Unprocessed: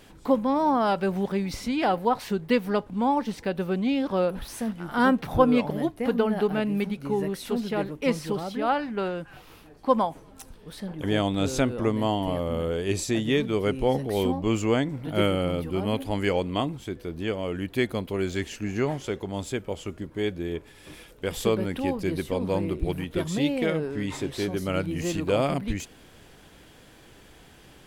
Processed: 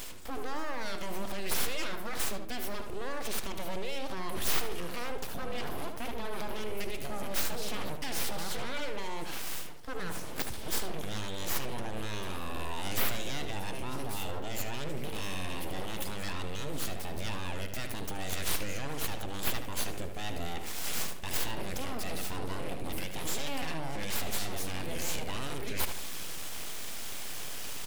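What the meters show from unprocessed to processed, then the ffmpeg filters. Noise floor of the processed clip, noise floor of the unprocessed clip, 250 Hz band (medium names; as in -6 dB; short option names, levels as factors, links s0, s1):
-35 dBFS, -52 dBFS, -16.0 dB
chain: -filter_complex "[0:a]areverse,acompressor=threshold=0.0224:ratio=12,areverse,alimiter=level_in=4.22:limit=0.0631:level=0:latency=1:release=49,volume=0.237,aexciter=amount=2.9:drive=4.8:freq=2100,aeval=exprs='abs(val(0))':c=same,asplit=2[s0][s1];[s1]adelay=75,lowpass=f=2900:p=1,volume=0.473,asplit=2[s2][s3];[s3]adelay=75,lowpass=f=2900:p=1,volume=0.43,asplit=2[s4][s5];[s5]adelay=75,lowpass=f=2900:p=1,volume=0.43,asplit=2[s6][s7];[s7]adelay=75,lowpass=f=2900:p=1,volume=0.43,asplit=2[s8][s9];[s9]adelay=75,lowpass=f=2900:p=1,volume=0.43[s10];[s0][s2][s4][s6][s8][s10]amix=inputs=6:normalize=0,volume=2.82"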